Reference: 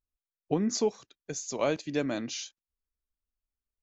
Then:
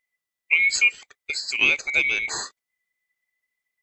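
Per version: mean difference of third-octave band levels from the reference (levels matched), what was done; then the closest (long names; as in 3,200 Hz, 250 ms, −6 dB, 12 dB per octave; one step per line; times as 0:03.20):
11.5 dB: neighbouring bands swapped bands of 2,000 Hz
level +8 dB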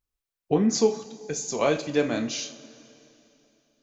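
4.5 dB: coupled-rooms reverb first 0.34 s, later 3.1 s, from −19 dB, DRR 4 dB
level +4 dB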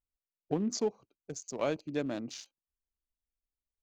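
3.5 dB: adaptive Wiener filter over 25 samples
level −3.5 dB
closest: third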